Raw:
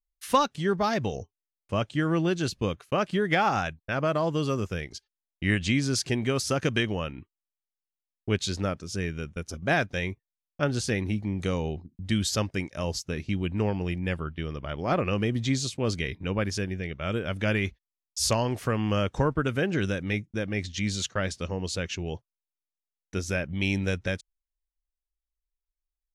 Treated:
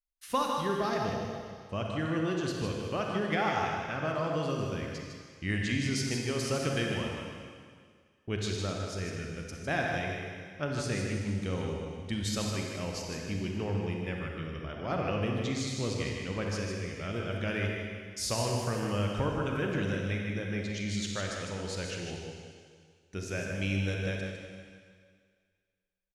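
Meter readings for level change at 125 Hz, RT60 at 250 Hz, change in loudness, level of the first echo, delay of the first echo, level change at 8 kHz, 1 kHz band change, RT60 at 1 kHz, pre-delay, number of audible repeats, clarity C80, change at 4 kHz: -4.0 dB, 1.8 s, -4.5 dB, -6.0 dB, 0.154 s, -4.5 dB, -4.5 dB, 1.9 s, 34 ms, 1, 1.0 dB, -4.5 dB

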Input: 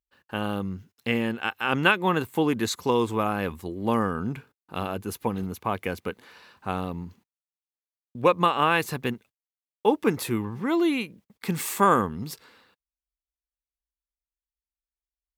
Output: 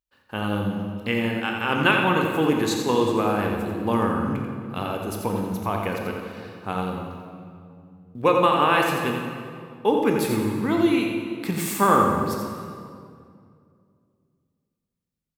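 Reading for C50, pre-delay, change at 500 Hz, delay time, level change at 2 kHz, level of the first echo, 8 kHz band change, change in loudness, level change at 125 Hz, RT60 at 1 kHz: 1.5 dB, 17 ms, +3.5 dB, 87 ms, +2.5 dB, -6.5 dB, +2.0 dB, +3.0 dB, +3.5 dB, 2.2 s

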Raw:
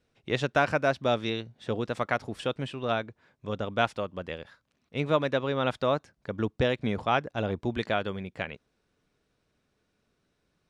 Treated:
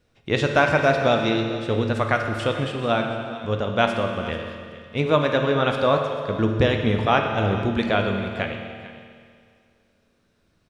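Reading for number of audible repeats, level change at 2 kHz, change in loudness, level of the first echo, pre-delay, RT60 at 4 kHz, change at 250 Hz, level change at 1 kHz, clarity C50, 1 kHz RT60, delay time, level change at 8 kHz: 1, +7.5 dB, +7.5 dB, -16.5 dB, 9 ms, 2.0 s, +8.5 dB, +7.0 dB, 4.5 dB, 2.1 s, 0.443 s, n/a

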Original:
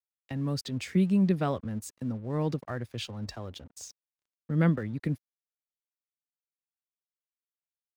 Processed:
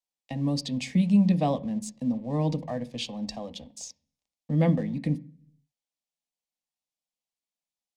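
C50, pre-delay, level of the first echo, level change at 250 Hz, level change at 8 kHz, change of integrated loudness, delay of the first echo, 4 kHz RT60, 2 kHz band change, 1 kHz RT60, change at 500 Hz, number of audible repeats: 20.0 dB, 3 ms, none, +3.5 dB, +3.5 dB, +3.0 dB, none, 0.50 s, -2.0 dB, 0.40 s, +2.0 dB, none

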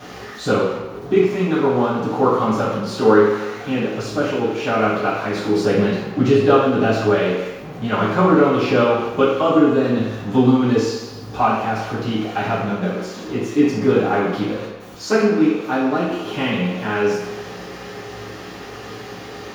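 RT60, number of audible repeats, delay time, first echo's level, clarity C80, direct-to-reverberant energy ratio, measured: 1.3 s, none, none, none, 4.0 dB, -11.0 dB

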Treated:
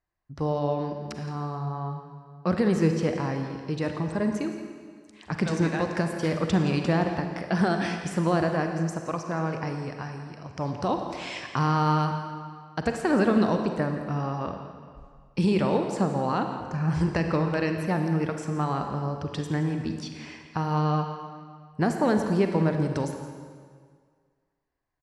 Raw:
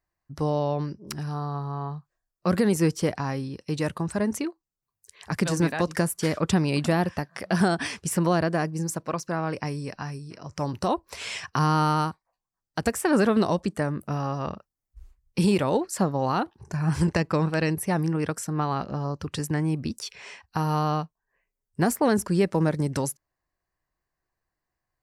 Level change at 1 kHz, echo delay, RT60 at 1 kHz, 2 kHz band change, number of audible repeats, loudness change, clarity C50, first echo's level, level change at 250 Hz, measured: -0.5 dB, 0.17 s, 1.9 s, -1.0 dB, 1, -0.5 dB, 5.0 dB, -14.5 dB, -0.5 dB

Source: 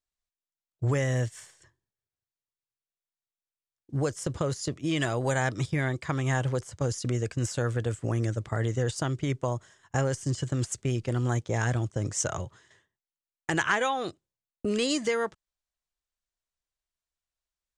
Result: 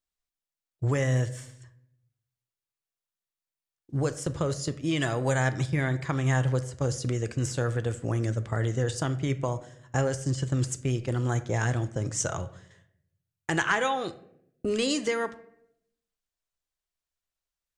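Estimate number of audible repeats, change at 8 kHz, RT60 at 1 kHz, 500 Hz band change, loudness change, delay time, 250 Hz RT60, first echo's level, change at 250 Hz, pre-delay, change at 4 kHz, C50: none, 0.0 dB, 0.60 s, +0.5 dB, +1.0 dB, none, 0.95 s, none, +0.5 dB, 6 ms, 0.0 dB, 15.5 dB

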